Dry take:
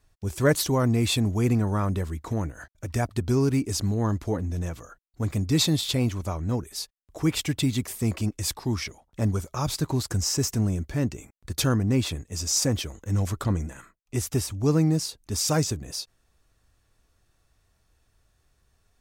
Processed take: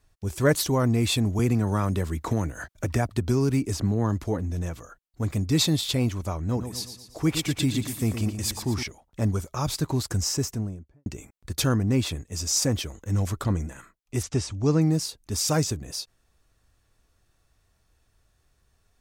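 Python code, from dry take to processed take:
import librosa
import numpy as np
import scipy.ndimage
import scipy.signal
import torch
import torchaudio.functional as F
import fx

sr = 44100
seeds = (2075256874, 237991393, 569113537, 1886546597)

y = fx.band_squash(x, sr, depth_pct=70, at=(1.39, 4.24))
y = fx.echo_feedback(y, sr, ms=116, feedback_pct=48, wet_db=-9, at=(6.44, 8.83))
y = fx.studio_fade_out(y, sr, start_s=10.22, length_s=0.84)
y = fx.lowpass(y, sr, hz=7500.0, slope=24, at=(14.22, 14.8), fade=0.02)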